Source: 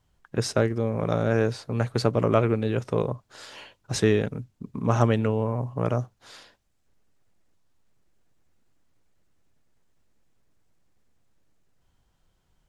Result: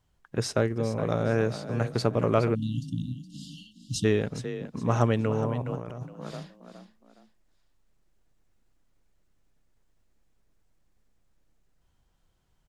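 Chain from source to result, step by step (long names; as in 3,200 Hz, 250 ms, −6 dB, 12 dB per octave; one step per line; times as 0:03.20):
echo with shifted repeats 416 ms, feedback 33%, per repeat +32 Hz, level −11.5 dB
0:02.55–0:04.05: time-frequency box erased 320–2,700 Hz
0:05.62–0:06.03: compressor whose output falls as the input rises −33 dBFS, ratio −1
level −2.5 dB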